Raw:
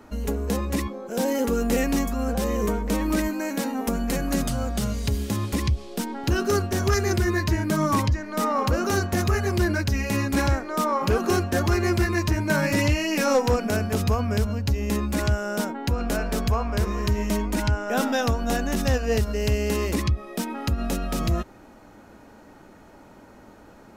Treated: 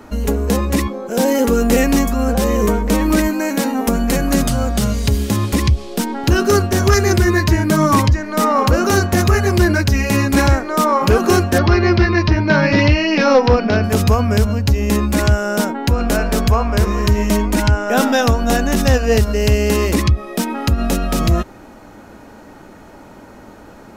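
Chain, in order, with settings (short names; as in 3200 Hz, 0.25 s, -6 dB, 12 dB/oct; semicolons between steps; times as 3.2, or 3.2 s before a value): 11.58–13.84 steep low-pass 5300 Hz 48 dB/oct; gain +9 dB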